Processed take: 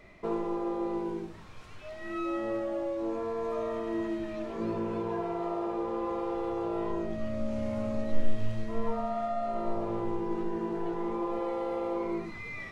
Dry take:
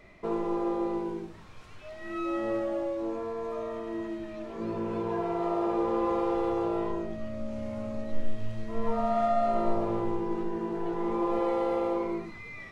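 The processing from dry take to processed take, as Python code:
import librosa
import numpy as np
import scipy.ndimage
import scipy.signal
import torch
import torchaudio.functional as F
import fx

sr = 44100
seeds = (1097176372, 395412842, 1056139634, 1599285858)

y = fx.rider(x, sr, range_db=5, speed_s=0.5)
y = y * 10.0 ** (-2.0 / 20.0)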